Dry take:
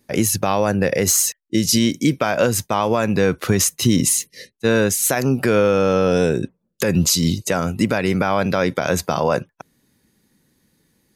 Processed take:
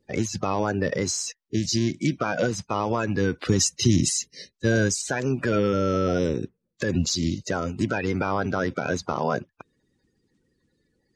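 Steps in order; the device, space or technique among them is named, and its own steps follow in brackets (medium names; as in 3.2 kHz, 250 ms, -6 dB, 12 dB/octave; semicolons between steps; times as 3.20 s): clip after many re-uploads (low-pass 6.5 kHz 24 dB/octave; coarse spectral quantiser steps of 30 dB); 3.45–5.02 s: tone controls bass +5 dB, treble +8 dB; trim -6 dB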